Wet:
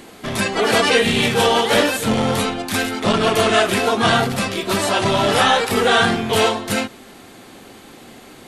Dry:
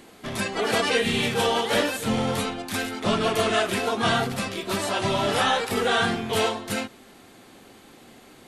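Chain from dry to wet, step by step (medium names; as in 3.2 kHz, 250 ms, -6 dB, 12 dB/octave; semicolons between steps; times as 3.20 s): transformer saturation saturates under 490 Hz; trim +8 dB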